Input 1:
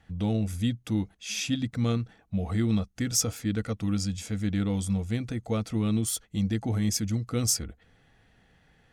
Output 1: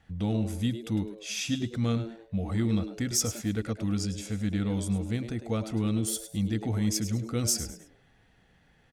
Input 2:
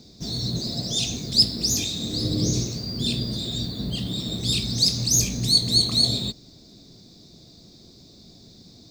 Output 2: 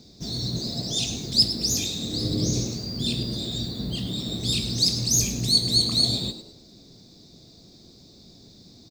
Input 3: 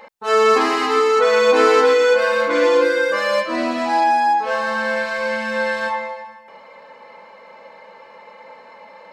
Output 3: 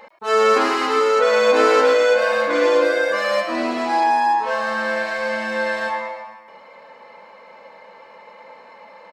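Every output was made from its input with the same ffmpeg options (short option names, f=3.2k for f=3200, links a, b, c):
-filter_complex "[0:a]asplit=4[a][b][c][d];[b]adelay=104,afreqshift=110,volume=-12dB[e];[c]adelay=208,afreqshift=220,volume=-21.9dB[f];[d]adelay=312,afreqshift=330,volume=-31.8dB[g];[a][e][f][g]amix=inputs=4:normalize=0,volume=-1.5dB"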